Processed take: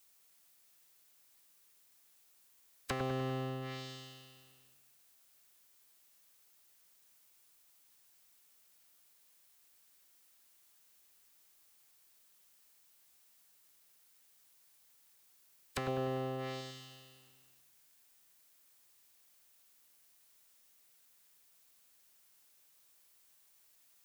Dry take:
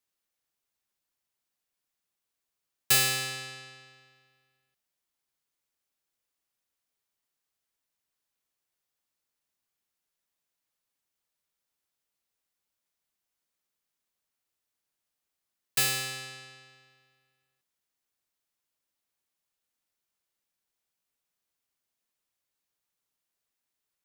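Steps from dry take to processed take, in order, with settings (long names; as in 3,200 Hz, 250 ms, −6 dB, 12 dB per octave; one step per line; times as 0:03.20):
ceiling on every frequency bin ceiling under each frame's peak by 16 dB
treble cut that deepens with the level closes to 1,100 Hz, closed at −40 dBFS
0:15.88–0:16.61: parametric band 570 Hz +7 dB 1.6 octaves
downward compressor 6 to 1, threshold −43 dBFS, peak gain reduction 11.5 dB
background noise blue −75 dBFS
delay with a low-pass on its return 99 ms, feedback 52%, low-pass 2,200 Hz, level −4.5 dB
level +7.5 dB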